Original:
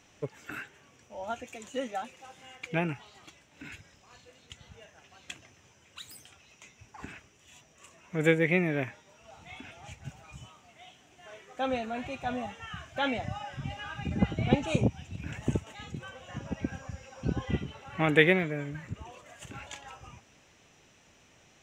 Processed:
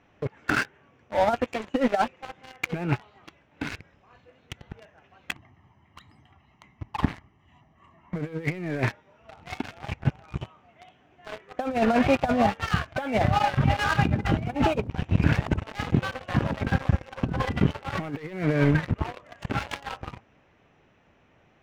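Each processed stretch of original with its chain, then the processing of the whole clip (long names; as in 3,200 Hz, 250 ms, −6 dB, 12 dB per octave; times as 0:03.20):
0:05.32–0:08.16: high-shelf EQ 2,300 Hz −10 dB + comb filter 1 ms, depth 76%
whole clip: low-pass filter 1,900 Hz 12 dB per octave; leveller curve on the samples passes 3; compressor whose output falls as the input rises −25 dBFS, ratio −0.5; level +2.5 dB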